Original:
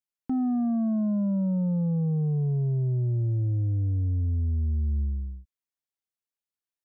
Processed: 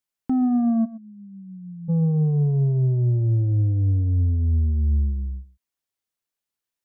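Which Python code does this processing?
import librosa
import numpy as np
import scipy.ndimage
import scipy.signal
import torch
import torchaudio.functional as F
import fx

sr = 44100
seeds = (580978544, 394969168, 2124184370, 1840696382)

y = fx.cheby2_lowpass(x, sr, hz=500.0, order=4, stop_db=70, at=(0.84, 1.88), fade=0.02)
y = y + 10.0 ** (-16.5 / 20.0) * np.pad(y, (int(122 * sr / 1000.0), 0))[:len(y)]
y = y * 10.0 ** (5.5 / 20.0)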